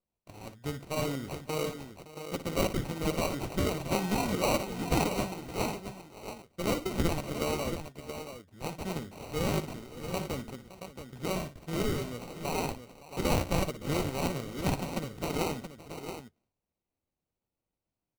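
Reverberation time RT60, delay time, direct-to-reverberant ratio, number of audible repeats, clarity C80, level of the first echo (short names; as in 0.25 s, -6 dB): none, 58 ms, none, 3, none, -11.5 dB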